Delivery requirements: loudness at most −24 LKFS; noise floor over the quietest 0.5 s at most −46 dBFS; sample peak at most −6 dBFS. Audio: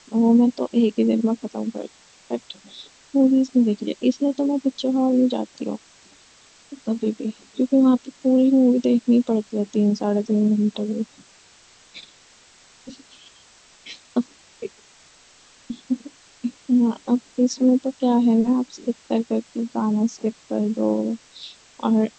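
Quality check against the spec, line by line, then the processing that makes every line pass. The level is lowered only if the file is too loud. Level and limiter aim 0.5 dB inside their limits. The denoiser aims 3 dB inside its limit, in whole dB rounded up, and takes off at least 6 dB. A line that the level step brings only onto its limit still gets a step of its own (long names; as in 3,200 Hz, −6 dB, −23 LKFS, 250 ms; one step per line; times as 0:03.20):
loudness −21.5 LKFS: out of spec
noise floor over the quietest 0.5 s −52 dBFS: in spec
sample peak −7.0 dBFS: in spec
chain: level −3 dB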